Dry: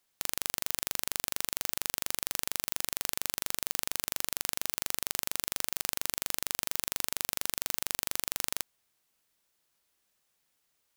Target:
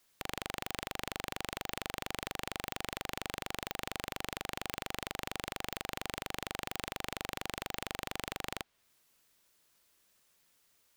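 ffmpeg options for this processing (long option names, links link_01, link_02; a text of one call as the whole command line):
ffmpeg -i in.wav -filter_complex "[0:a]bandreject=frequency=780:width=12,acrossover=split=810|4400[link_01][link_02][link_03];[link_03]acompressor=threshold=-43dB:ratio=6[link_04];[link_01][link_02][link_04]amix=inputs=3:normalize=0,asoftclip=type=tanh:threshold=-27.5dB,volume=5.5dB" out.wav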